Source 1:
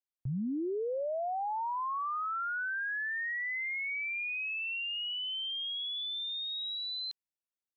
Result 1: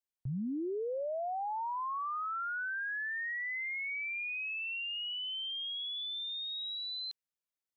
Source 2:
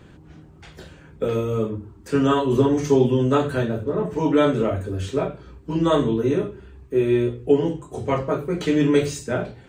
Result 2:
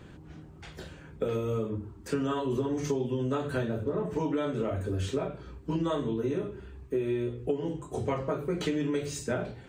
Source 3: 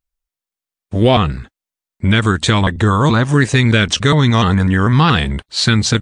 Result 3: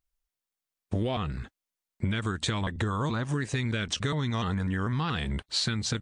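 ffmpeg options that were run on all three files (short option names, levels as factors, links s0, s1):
-af "acompressor=threshold=0.0631:ratio=12,volume=0.794"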